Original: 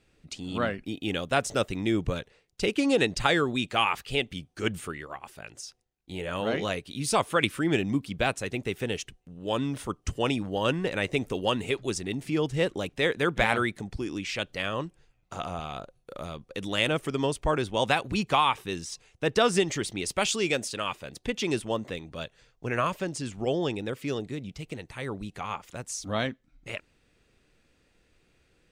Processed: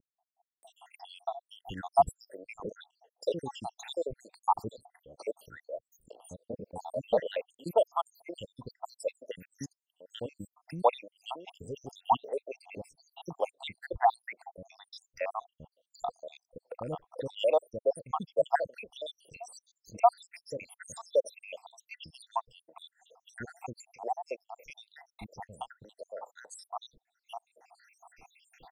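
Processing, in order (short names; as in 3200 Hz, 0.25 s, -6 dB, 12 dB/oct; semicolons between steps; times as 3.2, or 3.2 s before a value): random spectral dropouts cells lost 85%; upward compressor, threshold -38 dBFS; band shelf 690 Hz +15.5 dB 1.3 oct; vibrato 1.2 Hz 8.4 cents; bands offset in time lows, highs 0.63 s, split 360 Hz; gain -6.5 dB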